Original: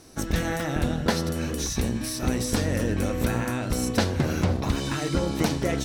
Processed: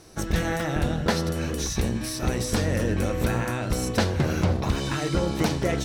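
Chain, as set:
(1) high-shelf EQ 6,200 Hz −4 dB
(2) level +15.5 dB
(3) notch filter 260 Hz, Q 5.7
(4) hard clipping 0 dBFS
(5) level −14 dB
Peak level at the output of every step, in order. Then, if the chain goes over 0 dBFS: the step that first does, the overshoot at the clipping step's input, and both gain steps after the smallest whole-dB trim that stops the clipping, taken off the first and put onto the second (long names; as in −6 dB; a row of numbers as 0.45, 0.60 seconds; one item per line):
−10.5, +5.0, +5.0, 0.0, −14.0 dBFS
step 2, 5.0 dB
step 2 +10.5 dB, step 5 −9 dB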